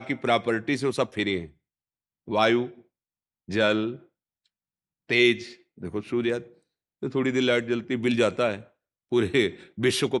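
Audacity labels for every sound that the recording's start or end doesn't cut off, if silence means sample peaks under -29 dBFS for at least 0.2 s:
2.280000	2.660000	sound
3.500000	3.930000	sound
5.110000	5.430000	sound
5.830000	6.380000	sound
7.030000	8.570000	sound
9.120000	9.500000	sound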